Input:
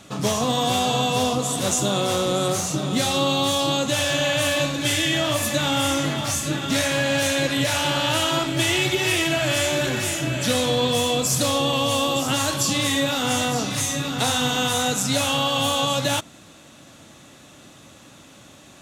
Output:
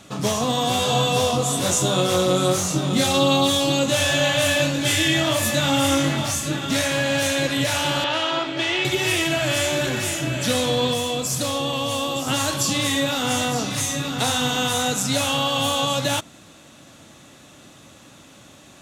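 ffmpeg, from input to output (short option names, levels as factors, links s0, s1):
-filter_complex "[0:a]asettb=1/sr,asplit=3[s0][s1][s2];[s0]atrim=end=0.774[s3];[s1]atrim=start=0.77:end=6.27,asetpts=PTS-STARTPTS,afade=t=in:d=0.004:c=qsin,afade=t=out:st=5.496:d=0.004:c=qsin,asplit=2[s4][s5];[s5]adelay=22,volume=0.708[s6];[s4][s6]amix=inputs=2:normalize=0,atrim=end_sample=242550[s7];[s2]atrim=start=6.266[s8];[s3][s7]acrossfade=d=0.004:c1=hsin:c2=qsin[s9];[s9][s8]acrossfade=d=0.004:c1=qsin:c2=hsin,asettb=1/sr,asplit=3[s10][s11][s12];[s10]atrim=end=8.044[s13];[s11]atrim=start=8.04:end=8.85,asetpts=PTS-STARTPTS,afade=t=in:d=0.004:c=qsin,afade=t=out:st=0.806:d=0.004:c=qsin,acrossover=split=280 5100:gain=0.224 1 0.0708[s14][s15][s16];[s14][s15][s16]amix=inputs=3:normalize=0[s17];[s12]atrim=start=8.846[s18];[s13][s17]acrossfade=d=0.004:c1=hsin:c2=qsin[s19];[s19][s18]acrossfade=d=0.004:c1=qsin:c2=hsin,asplit=3[s20][s21][s22];[s20]atrim=end=10.942[s23];[s21]atrim=start=10.938:end=12.272,asetpts=PTS-STARTPTS,volume=0.708[s24];[s22]atrim=start=12.268[s25];[s23][s24]acrossfade=d=0.004:c1=hsin:c2=hsin[s26];[s26][s25]acrossfade=d=0.004:c1=hsin:c2=hsin"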